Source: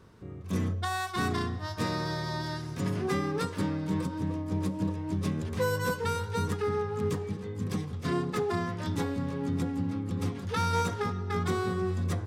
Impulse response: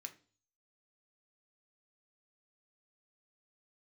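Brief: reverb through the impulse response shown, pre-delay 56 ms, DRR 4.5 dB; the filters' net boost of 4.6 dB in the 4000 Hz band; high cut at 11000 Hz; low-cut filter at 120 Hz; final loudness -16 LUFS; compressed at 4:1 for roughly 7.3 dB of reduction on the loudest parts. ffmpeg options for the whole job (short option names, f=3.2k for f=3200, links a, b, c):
-filter_complex "[0:a]highpass=120,lowpass=11k,equalizer=f=4k:t=o:g=5.5,acompressor=threshold=-34dB:ratio=4,asplit=2[a][b];[1:a]atrim=start_sample=2205,adelay=56[c];[b][c]afir=irnorm=-1:irlink=0,volume=0.5dB[d];[a][d]amix=inputs=2:normalize=0,volume=21dB"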